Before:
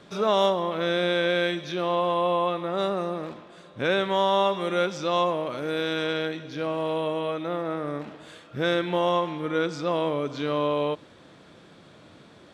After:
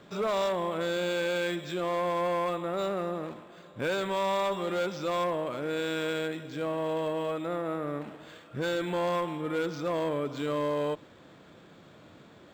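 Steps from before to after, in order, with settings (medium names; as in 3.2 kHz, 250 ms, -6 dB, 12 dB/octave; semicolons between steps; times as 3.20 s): Chebyshev shaper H 5 -12 dB, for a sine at -11 dBFS; decimation joined by straight lines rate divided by 4×; trim -9 dB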